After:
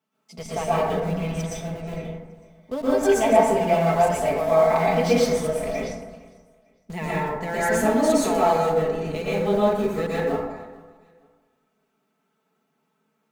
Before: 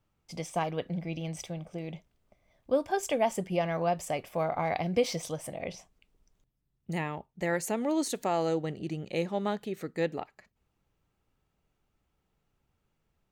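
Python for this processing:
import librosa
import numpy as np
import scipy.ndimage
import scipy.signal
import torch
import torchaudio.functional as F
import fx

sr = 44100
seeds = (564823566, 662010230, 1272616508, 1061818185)

p1 = scipy.signal.sosfilt(scipy.signal.butter(4, 170.0, 'highpass', fs=sr, output='sos'), x)
p2 = p1 + 0.88 * np.pad(p1, (int(4.6 * sr / 1000.0), 0))[:len(p1)]
p3 = fx.schmitt(p2, sr, flips_db=-31.0)
p4 = p2 + (p3 * librosa.db_to_amplitude(-8.0))
p5 = fx.echo_feedback(p4, sr, ms=453, feedback_pct=33, wet_db=-23.5)
p6 = fx.rev_plate(p5, sr, seeds[0], rt60_s=1.2, hf_ratio=0.35, predelay_ms=105, drr_db=-8.5)
y = p6 * librosa.db_to_amplitude(-3.0)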